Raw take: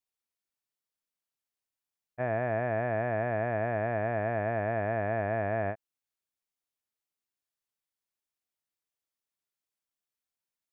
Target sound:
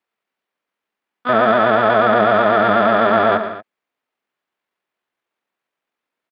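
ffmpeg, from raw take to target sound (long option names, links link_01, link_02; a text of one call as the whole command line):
ffmpeg -i in.wav -filter_complex "[0:a]asplit=2[link_01][link_02];[link_02]asetrate=88200,aresample=44100,atempo=0.5,volume=-1dB[link_03];[link_01][link_03]amix=inputs=2:normalize=0,asplit=2[link_04][link_05];[link_05]alimiter=limit=-21.5dB:level=0:latency=1:release=14,volume=-2dB[link_06];[link_04][link_06]amix=inputs=2:normalize=0,acrossover=split=180 2900:gain=0.112 1 0.0891[link_07][link_08][link_09];[link_07][link_08][link_09]amix=inputs=3:normalize=0,acontrast=40,atempo=1.7,aecho=1:1:115|174|233:0.299|0.168|0.158,volume=5.5dB" out.wav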